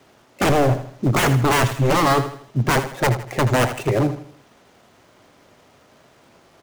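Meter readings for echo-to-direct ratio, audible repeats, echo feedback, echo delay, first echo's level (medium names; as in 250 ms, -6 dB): -10.5 dB, 3, 39%, 80 ms, -11.0 dB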